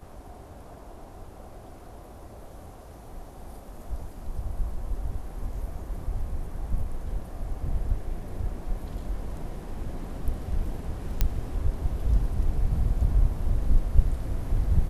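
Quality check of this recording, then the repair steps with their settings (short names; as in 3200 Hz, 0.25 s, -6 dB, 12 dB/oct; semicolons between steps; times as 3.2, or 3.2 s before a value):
11.21 pop -9 dBFS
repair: de-click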